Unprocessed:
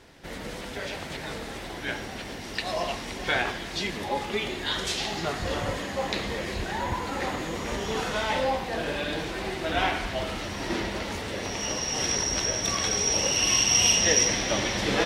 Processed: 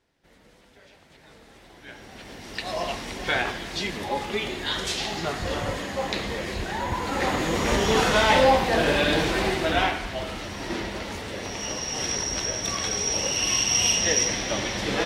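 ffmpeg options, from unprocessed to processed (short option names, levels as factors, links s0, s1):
-af "volume=2.66,afade=t=in:st=1.04:d=0.89:silence=0.421697,afade=t=in:st=1.93:d=0.98:silence=0.237137,afade=t=in:st=6.89:d=0.82:silence=0.421697,afade=t=out:st=9.39:d=0.58:silence=0.334965"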